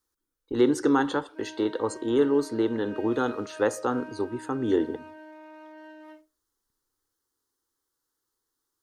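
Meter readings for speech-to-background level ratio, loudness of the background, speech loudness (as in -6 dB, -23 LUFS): 18.0 dB, -45.0 LUFS, -27.0 LUFS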